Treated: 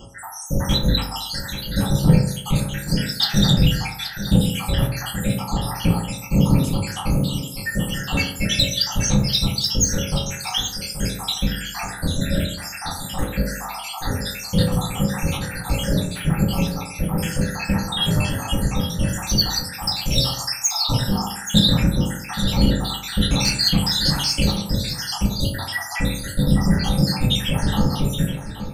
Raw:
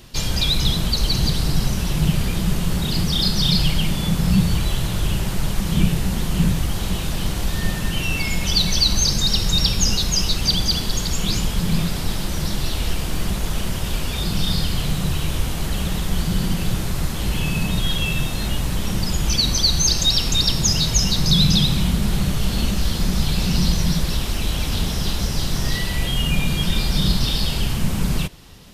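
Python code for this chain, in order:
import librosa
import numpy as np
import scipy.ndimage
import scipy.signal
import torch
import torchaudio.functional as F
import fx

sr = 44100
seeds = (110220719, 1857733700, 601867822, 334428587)

y = fx.spec_dropout(x, sr, seeds[0], share_pct=83)
y = fx.peak_eq(y, sr, hz=5000.0, db=13.5, octaves=0.95, at=(23.21, 24.44))
y = 10.0 ** (-16.5 / 20.0) * np.tanh(y / 10.0 ** (-16.5 / 20.0))
y = y + 10.0 ** (-11.5 / 20.0) * np.pad(y, (int(827 * sr / 1000.0), 0))[:len(y)]
y = fx.rev_fdn(y, sr, rt60_s=0.75, lf_ratio=1.0, hf_ratio=0.35, size_ms=11.0, drr_db=-5.0)
y = y * 10.0 ** (4.0 / 20.0)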